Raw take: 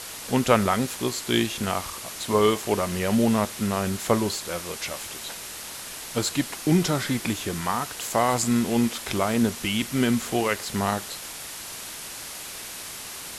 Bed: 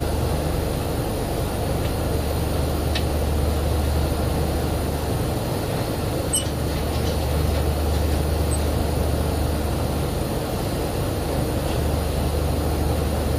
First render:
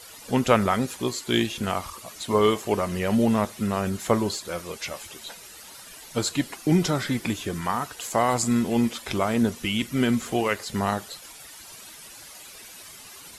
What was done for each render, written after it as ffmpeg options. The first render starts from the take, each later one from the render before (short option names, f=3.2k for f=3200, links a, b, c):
-af "afftdn=nr=12:nf=-38"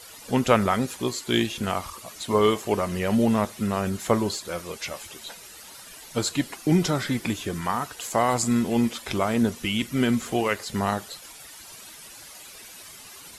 -af anull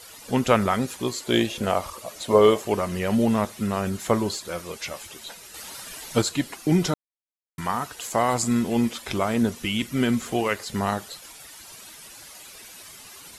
-filter_complex "[0:a]asettb=1/sr,asplit=3[a][b][c];[a]atrim=end=1.204[d];[b]atrim=start=1.2:end=2.63,asetpts=PTS-STARTPTS,afade=t=in:d=0.004:c=qsin,afade=t=out:st=1.426:d=0.004:c=qsin,equalizer=f=560:t=o:w=0.77:g=9.5[e];[c]atrim=start=2.626[f];[d][e]acrossfade=d=0.004:c1=hsin:c2=qsin[g];[g][f]acrossfade=d=0.004:c1=qsin:c2=hsin,asettb=1/sr,asplit=3[h][i][j];[h]atrim=end=5.544[k];[i]atrim=start=5.54:end=6.22,asetpts=PTS-STARTPTS,afade=t=in:d=0.004:c=qsin,afade=t=out:st=0.676:d=0.004:c=qsin,acontrast=34[l];[j]atrim=start=6.216[m];[k][l]acrossfade=d=0.004:c1=hsin:c2=qsin[n];[n][m]acrossfade=d=0.004:c1=qsin:c2=hsin,asplit=3[o][p][q];[o]atrim=end=6.94,asetpts=PTS-STARTPTS,afade=t=out:st=6.936:d=0.004:c=hsin[r];[p]atrim=start=6.94:end=7.58,asetpts=PTS-STARTPTS,volume=0[s];[q]atrim=start=7.58,asetpts=PTS-STARTPTS,afade=t=in:d=0.004:c=hsin[t];[r][s][t]concat=n=3:v=0:a=1"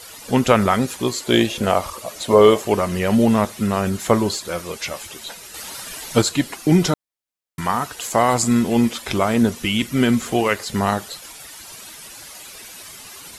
-af "volume=5.5dB,alimiter=limit=-2dB:level=0:latency=1"